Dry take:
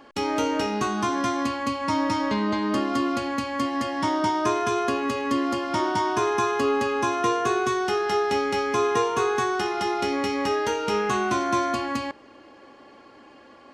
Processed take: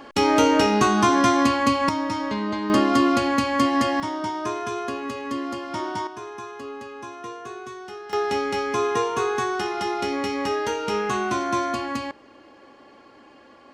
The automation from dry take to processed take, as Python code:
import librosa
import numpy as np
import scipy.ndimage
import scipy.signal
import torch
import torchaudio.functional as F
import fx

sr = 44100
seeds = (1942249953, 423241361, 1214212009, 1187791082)

y = fx.gain(x, sr, db=fx.steps((0.0, 7.0), (1.89, -2.0), (2.7, 6.0), (4.0, -4.5), (6.07, -13.0), (8.13, -0.5)))